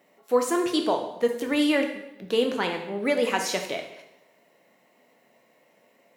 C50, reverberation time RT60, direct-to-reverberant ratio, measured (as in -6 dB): 7.0 dB, 0.90 s, 3.0 dB